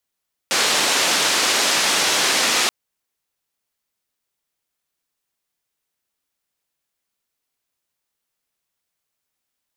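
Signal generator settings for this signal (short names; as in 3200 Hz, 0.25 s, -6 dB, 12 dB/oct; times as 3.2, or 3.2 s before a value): noise band 270–6100 Hz, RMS -18.5 dBFS 2.18 s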